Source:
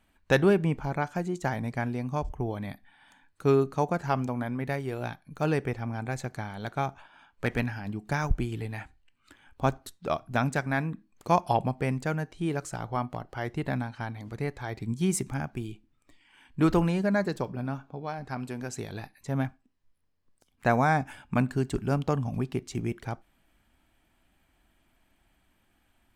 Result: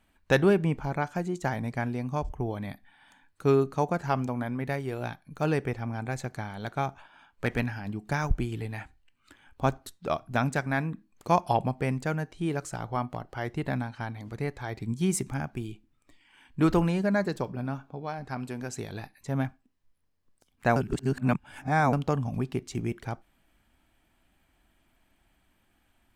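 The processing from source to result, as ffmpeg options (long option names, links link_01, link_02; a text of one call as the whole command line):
ffmpeg -i in.wav -filter_complex "[0:a]asplit=3[link_01][link_02][link_03];[link_01]atrim=end=20.762[link_04];[link_02]atrim=start=20.758:end=21.932,asetpts=PTS-STARTPTS,areverse[link_05];[link_03]atrim=start=21.928[link_06];[link_04][link_05]acrossfade=duration=0.004:curve1=hsin:curve2=hsin[link_07];[link_07][link_06]acrossfade=duration=0.004:curve1=hsin:curve2=hsin" out.wav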